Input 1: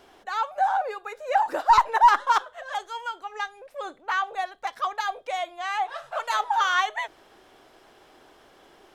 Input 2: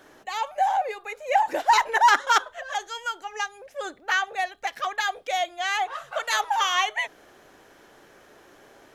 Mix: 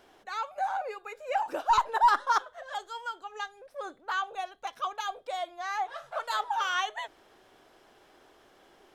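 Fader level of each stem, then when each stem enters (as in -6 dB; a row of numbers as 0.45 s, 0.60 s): -5.5 dB, -16.0 dB; 0.00 s, 0.00 s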